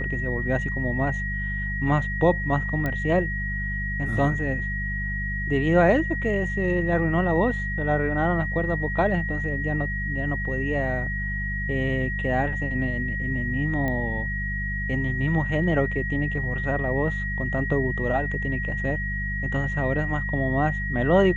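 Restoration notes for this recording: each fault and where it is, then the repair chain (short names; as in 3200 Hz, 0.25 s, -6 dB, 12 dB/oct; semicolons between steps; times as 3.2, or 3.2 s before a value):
hum 50 Hz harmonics 4 -30 dBFS
tone 1900 Hz -29 dBFS
2.86 pop -15 dBFS
13.88 pop -16 dBFS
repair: de-click; de-hum 50 Hz, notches 4; notch 1900 Hz, Q 30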